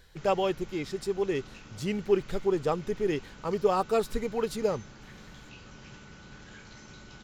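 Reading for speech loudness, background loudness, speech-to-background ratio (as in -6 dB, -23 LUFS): -30.0 LUFS, -49.5 LUFS, 19.5 dB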